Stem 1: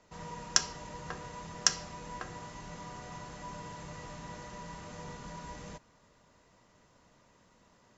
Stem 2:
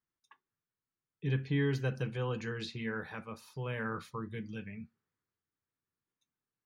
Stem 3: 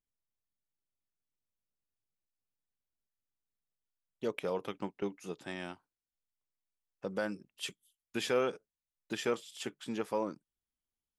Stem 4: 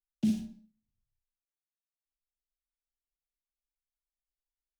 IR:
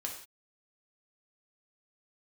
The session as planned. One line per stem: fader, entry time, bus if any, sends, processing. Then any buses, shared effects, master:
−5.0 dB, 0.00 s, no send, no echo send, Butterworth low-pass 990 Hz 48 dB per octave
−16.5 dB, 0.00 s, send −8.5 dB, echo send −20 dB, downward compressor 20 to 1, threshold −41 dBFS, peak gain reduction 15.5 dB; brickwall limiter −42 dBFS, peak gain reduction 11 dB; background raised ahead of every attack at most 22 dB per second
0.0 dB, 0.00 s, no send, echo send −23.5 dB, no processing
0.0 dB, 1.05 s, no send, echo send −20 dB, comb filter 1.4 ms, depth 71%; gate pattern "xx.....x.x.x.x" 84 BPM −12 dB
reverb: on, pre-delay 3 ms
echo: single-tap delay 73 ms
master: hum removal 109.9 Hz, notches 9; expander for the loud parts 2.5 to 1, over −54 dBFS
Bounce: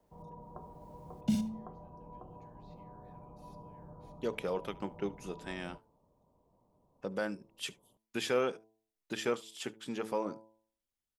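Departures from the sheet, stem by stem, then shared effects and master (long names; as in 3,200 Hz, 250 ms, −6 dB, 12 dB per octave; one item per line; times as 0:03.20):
stem 2 −16.5 dB → −23.5 dB
master: missing expander for the loud parts 2.5 to 1, over −54 dBFS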